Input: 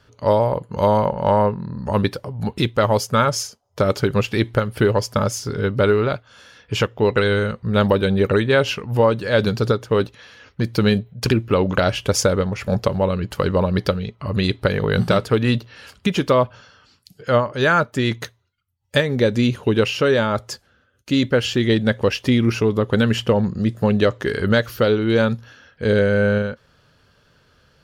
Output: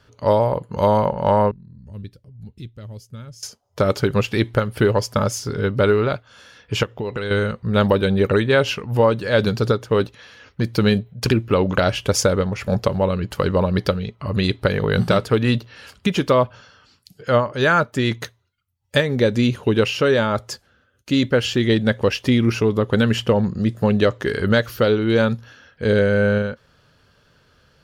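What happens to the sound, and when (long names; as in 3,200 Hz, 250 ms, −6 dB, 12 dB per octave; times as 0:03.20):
0:01.51–0:03.43: guitar amp tone stack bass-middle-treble 10-0-1
0:06.83–0:07.31: downward compressor, threshold −22 dBFS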